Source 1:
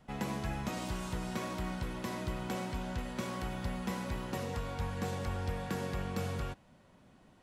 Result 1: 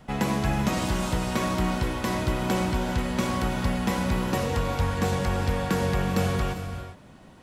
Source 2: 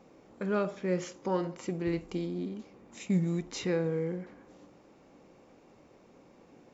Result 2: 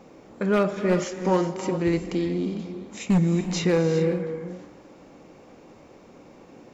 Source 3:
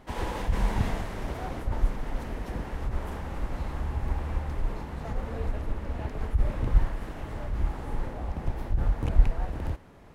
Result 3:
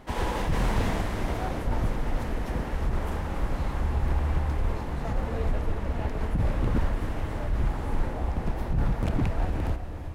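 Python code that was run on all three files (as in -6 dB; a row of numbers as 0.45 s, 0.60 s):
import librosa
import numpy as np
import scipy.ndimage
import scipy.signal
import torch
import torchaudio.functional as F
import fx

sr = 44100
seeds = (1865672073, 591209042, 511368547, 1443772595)

y = 10.0 ** (-22.0 / 20.0) * (np.abs((x / 10.0 ** (-22.0 / 20.0) + 3.0) % 4.0 - 2.0) - 1.0)
y = fx.rev_gated(y, sr, seeds[0], gate_ms=430, shape='rising', drr_db=8.5)
y = y * 10.0 ** (-26 / 20.0) / np.sqrt(np.mean(np.square(y)))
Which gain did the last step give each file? +11.0 dB, +8.5 dB, +3.5 dB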